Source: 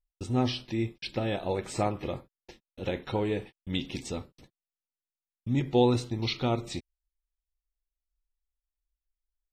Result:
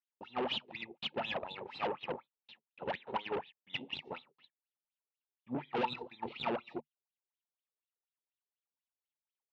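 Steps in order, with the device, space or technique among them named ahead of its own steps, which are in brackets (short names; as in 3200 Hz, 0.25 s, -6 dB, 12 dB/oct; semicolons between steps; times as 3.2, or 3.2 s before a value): wah-wah guitar rig (wah 4.1 Hz 390–3900 Hz, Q 10; tube stage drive 46 dB, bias 0.8; speaker cabinet 99–4000 Hz, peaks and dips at 150 Hz +8 dB, 230 Hz +8 dB, 890 Hz +9 dB, 2800 Hz +7 dB); gain +12.5 dB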